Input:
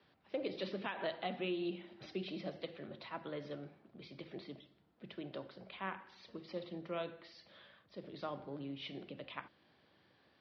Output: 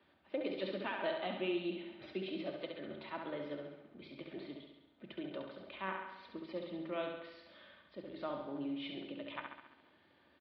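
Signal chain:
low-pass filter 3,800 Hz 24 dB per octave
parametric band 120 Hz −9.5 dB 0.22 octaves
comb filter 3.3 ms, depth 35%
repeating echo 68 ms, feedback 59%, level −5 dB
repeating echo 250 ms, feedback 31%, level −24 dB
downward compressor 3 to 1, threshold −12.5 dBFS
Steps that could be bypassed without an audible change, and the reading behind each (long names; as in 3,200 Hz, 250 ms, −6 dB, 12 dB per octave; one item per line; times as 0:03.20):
downward compressor, threshold −12.5 dBFS: peak of its input −24.5 dBFS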